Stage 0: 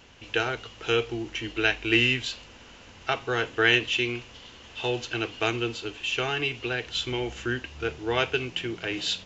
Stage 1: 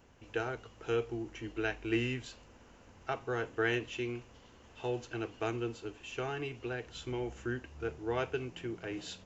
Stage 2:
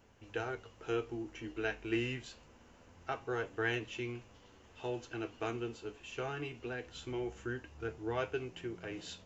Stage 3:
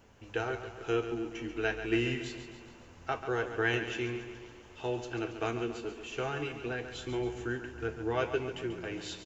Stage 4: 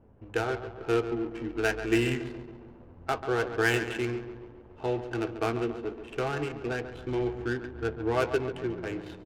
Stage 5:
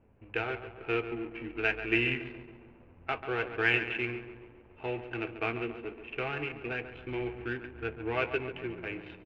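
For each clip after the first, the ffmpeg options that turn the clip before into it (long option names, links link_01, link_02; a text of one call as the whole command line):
ffmpeg -i in.wav -af "equalizer=frequency=3400:width=0.77:gain=-13,volume=-6dB" out.wav
ffmpeg -i in.wav -af "flanger=delay=9:depth=5.3:regen=55:speed=0.25:shape=triangular,volume=2dB" out.wav
ffmpeg -i in.wav -af "aecho=1:1:139|278|417|556|695|834|973:0.316|0.183|0.106|0.0617|0.0358|0.0208|0.012,volume=4.5dB" out.wav
ffmpeg -i in.wav -af "adynamicsmooth=sensitivity=8:basefreq=610,volume=4.5dB" out.wav
ffmpeg -i in.wav -af "lowpass=frequency=2500:width_type=q:width=4.9,volume=-6dB" out.wav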